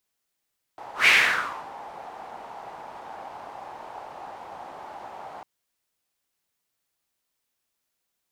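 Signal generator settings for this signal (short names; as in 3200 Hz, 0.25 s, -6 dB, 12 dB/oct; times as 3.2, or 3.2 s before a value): whoosh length 4.65 s, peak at 0.29, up 0.14 s, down 0.67 s, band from 820 Hz, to 2300 Hz, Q 4.2, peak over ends 24 dB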